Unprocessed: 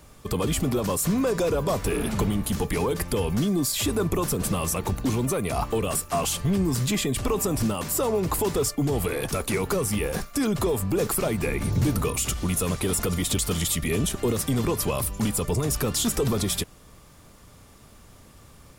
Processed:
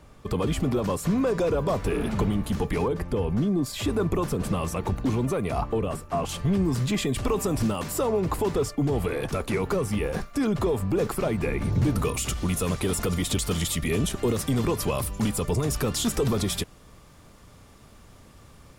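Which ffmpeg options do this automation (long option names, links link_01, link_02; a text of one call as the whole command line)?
ffmpeg -i in.wav -af "asetnsamples=nb_out_samples=441:pad=0,asendcmd='2.88 lowpass f 1000;3.66 lowpass f 2300;5.61 lowpass f 1100;6.29 lowpass f 2900;6.98 lowpass f 4900;8.03 lowpass f 2500;11.96 lowpass f 6300',lowpass=frequency=2600:poles=1" out.wav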